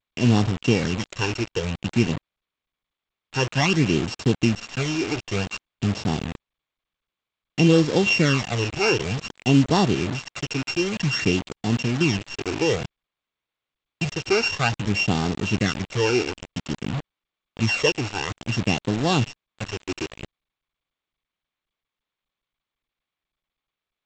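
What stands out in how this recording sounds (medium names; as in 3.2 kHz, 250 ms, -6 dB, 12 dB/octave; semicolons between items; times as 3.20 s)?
a buzz of ramps at a fixed pitch in blocks of 16 samples; phasing stages 12, 0.54 Hz, lowest notch 180–2300 Hz; a quantiser's noise floor 6-bit, dither none; G.722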